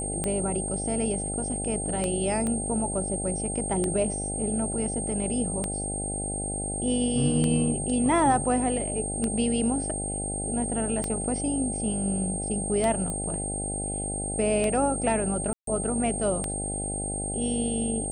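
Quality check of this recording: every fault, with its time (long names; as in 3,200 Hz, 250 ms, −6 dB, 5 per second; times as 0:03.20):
mains buzz 50 Hz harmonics 16 −34 dBFS
scratch tick 33 1/3 rpm −14 dBFS
whistle 8,600 Hz −31 dBFS
0:02.47: click −19 dBFS
0:13.10: click −19 dBFS
0:15.53–0:15.67: drop-out 143 ms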